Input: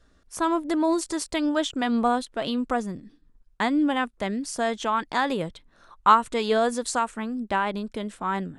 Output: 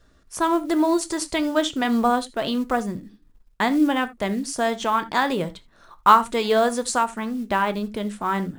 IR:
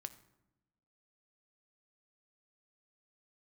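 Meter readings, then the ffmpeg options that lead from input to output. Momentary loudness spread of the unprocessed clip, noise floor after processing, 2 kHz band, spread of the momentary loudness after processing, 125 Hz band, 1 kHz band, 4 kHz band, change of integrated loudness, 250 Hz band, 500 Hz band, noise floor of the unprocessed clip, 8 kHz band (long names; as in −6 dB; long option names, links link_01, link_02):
9 LU, −57 dBFS, +3.0 dB, 9 LU, +3.5 dB, +3.0 dB, +3.0 dB, +3.0 dB, +3.0 dB, +3.0 dB, −61 dBFS, +3.5 dB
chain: -filter_complex "[0:a]acrusher=bits=7:mode=log:mix=0:aa=0.000001[link_01];[1:a]atrim=start_sample=2205,atrim=end_sample=3969[link_02];[link_01][link_02]afir=irnorm=-1:irlink=0,volume=7.5dB"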